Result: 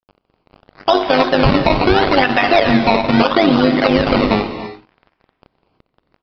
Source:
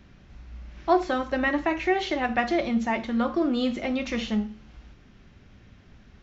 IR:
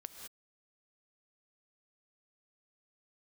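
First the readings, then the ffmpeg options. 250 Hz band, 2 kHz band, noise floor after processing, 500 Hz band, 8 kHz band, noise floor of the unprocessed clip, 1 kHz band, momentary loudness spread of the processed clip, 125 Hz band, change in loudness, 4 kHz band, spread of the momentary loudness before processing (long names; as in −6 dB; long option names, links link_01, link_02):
+10.5 dB, +11.5 dB, −71 dBFS, +13.0 dB, can't be measured, −54 dBFS, +12.5 dB, 6 LU, +20.0 dB, +12.0 dB, +16.0 dB, 5 LU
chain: -filter_complex "[0:a]highpass=frequency=660:poles=1,highshelf=frequency=3800:gain=-8.5,aecho=1:1:7.4:0.66,acompressor=threshold=-31dB:ratio=2,acrusher=samples=19:mix=1:aa=0.000001:lfo=1:lforange=19:lforate=0.75,tremolo=f=100:d=0.71,aeval=exprs='sgn(val(0))*max(abs(val(0))-0.00158,0)':channel_layout=same,aresample=11025,aresample=44100,asplit=2[link_01][link_02];[1:a]atrim=start_sample=2205,asetrate=28665,aresample=44100[link_03];[link_02][link_03]afir=irnorm=-1:irlink=0,volume=0.5dB[link_04];[link_01][link_04]amix=inputs=2:normalize=0,alimiter=level_in=22.5dB:limit=-1dB:release=50:level=0:latency=1,volume=-1dB"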